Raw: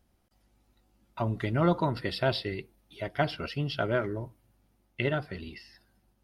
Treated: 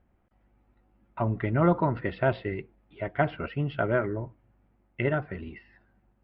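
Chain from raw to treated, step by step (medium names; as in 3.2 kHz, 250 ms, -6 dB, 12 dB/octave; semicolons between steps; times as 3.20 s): low-pass 2.3 kHz 24 dB/octave; trim +2.5 dB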